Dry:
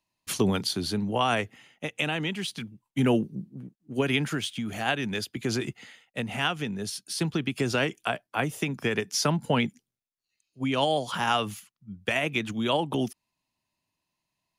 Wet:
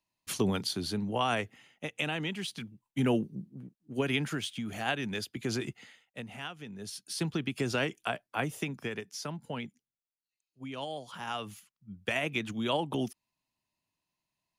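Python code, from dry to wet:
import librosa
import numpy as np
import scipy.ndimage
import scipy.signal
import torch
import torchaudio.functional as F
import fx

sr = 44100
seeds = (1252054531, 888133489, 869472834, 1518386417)

y = fx.gain(x, sr, db=fx.line((5.79, -4.5), (6.56, -15.0), (7.04, -4.5), (8.57, -4.5), (9.17, -13.5), (11.15, -13.5), (11.93, -4.5)))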